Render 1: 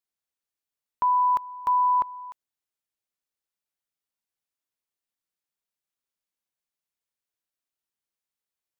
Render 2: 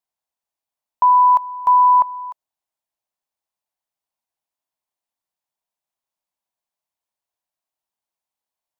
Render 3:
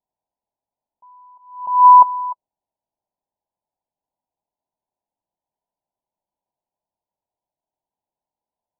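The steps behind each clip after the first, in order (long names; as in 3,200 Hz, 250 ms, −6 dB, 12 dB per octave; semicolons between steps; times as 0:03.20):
flat-topped bell 800 Hz +9.5 dB 1 octave
samples sorted by size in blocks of 8 samples; Chebyshev low-pass filter 1,000 Hz, order 8; level that may rise only so fast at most 100 dB per second; level +7 dB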